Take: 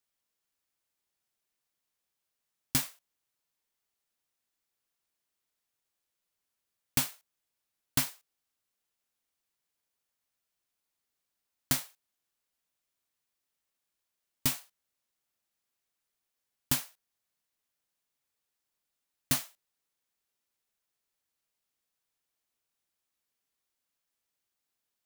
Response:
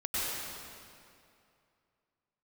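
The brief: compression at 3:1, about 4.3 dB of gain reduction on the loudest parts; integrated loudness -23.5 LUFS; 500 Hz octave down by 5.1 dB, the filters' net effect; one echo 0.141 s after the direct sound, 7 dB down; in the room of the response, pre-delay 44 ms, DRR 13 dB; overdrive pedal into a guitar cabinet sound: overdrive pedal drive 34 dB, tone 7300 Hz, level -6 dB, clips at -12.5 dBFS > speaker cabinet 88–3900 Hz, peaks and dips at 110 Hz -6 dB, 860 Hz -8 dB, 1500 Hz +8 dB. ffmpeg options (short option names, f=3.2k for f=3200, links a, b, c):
-filter_complex "[0:a]equalizer=f=500:t=o:g=-6,acompressor=threshold=-29dB:ratio=3,aecho=1:1:141:0.447,asplit=2[a][b];[1:a]atrim=start_sample=2205,adelay=44[c];[b][c]afir=irnorm=-1:irlink=0,volume=-21dB[d];[a][d]amix=inputs=2:normalize=0,asplit=2[e][f];[f]highpass=f=720:p=1,volume=34dB,asoftclip=type=tanh:threshold=-12.5dB[g];[e][g]amix=inputs=2:normalize=0,lowpass=f=7.3k:p=1,volume=-6dB,highpass=88,equalizer=f=110:t=q:w=4:g=-6,equalizer=f=860:t=q:w=4:g=-8,equalizer=f=1.5k:t=q:w=4:g=8,lowpass=f=3.9k:w=0.5412,lowpass=f=3.9k:w=1.3066,volume=7.5dB"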